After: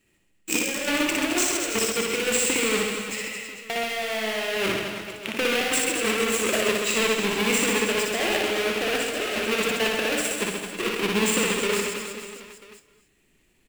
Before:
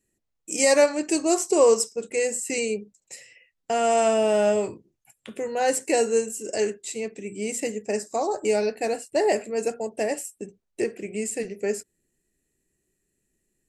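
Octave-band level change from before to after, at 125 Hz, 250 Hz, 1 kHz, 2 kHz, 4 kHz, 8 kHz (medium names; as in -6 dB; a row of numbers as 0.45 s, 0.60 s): no reading, +1.5 dB, -1.5 dB, +9.0 dB, +10.5 dB, +3.0 dB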